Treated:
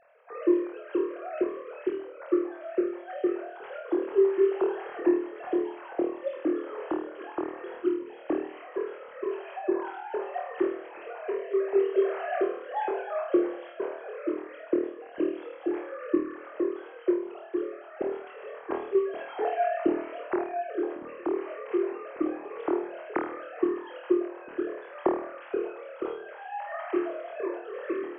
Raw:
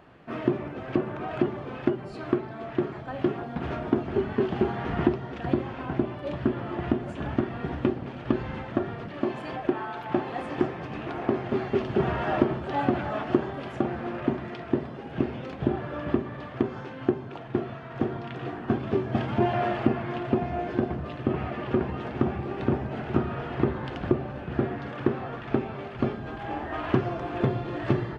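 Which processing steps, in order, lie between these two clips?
formants replaced by sine waves; flutter echo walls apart 4.4 m, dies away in 0.53 s; trim -4.5 dB

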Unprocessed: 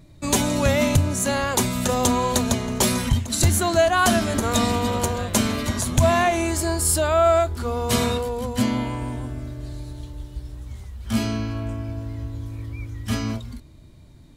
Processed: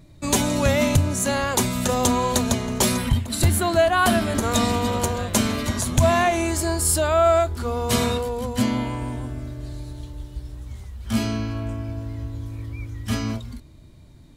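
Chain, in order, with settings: 2.97–4.35 s: peaking EQ 6.3 kHz -9.5 dB 0.56 oct

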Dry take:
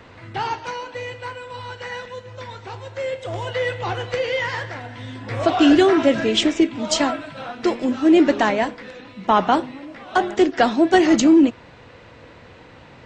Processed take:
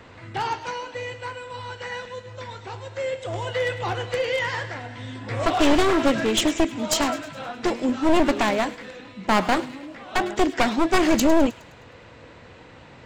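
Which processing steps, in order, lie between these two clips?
one-sided wavefolder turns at -16.5 dBFS; peaking EQ 7.5 kHz +4.5 dB 0.33 oct; feedback echo behind a high-pass 104 ms, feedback 51%, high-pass 2 kHz, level -14 dB; trim -1.5 dB

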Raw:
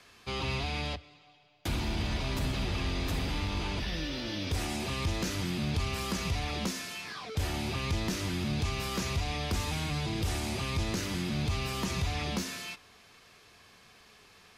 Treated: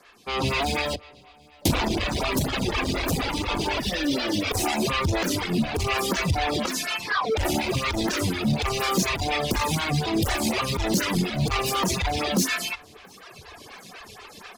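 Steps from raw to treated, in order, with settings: bass shelf 140 Hz -5 dB; delay 248 ms -22 dB; level rider gain up to 14.5 dB; 4.90–7.45 s: treble shelf 6.9 kHz -4.5 dB; hard clipper -19 dBFS, distortion -11 dB; feedback delay 684 ms, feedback 54%, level -23 dB; compression, threshold -22 dBFS, peak gain reduction 3 dB; reverb removal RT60 2 s; lamp-driven phase shifter 4.1 Hz; trim +7 dB

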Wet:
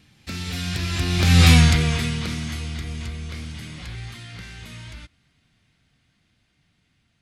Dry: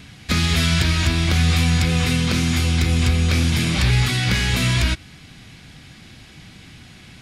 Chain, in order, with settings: Doppler pass-by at 1.50 s, 23 m/s, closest 3.5 m; trim +6 dB

